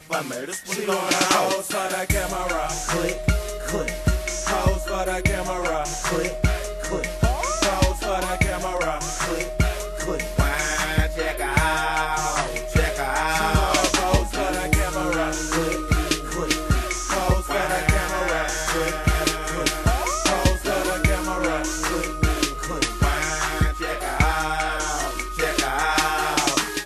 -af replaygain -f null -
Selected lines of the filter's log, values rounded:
track_gain = +3.6 dB
track_peak = 0.465